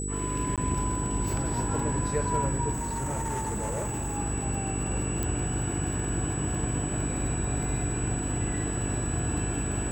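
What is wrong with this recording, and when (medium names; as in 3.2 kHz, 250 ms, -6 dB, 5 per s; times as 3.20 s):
buzz 50 Hz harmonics 9 -33 dBFS
crackle 85 per s -36 dBFS
whine 7.9 kHz -35 dBFS
0.56–0.58 s: dropout 17 ms
2.72–4.18 s: clipped -27.5 dBFS
5.23 s: pop -16 dBFS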